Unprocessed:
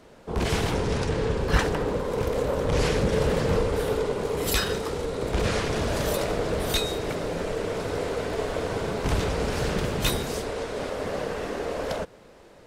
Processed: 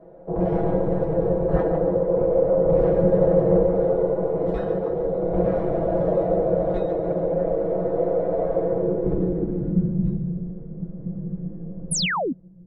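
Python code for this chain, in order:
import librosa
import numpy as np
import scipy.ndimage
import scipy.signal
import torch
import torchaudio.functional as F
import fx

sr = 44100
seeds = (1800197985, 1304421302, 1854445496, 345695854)

y = x + 0.89 * np.pad(x, (int(6.1 * sr / 1000.0), 0))[:len(x)]
y = fx.echo_thinned(y, sr, ms=142, feedback_pct=51, hz=170.0, wet_db=-9.5)
y = fx.filter_sweep_lowpass(y, sr, from_hz=630.0, to_hz=170.0, start_s=8.59, end_s=10.22, q=2.6)
y = fx.comb_fb(y, sr, f0_hz=180.0, decay_s=0.15, harmonics='all', damping=0.0, mix_pct=80)
y = fx.spec_paint(y, sr, seeds[0], shape='fall', start_s=11.91, length_s=0.42, low_hz=220.0, high_hz=11000.0, level_db=-30.0)
y = y * 10.0 ** (6.0 / 20.0)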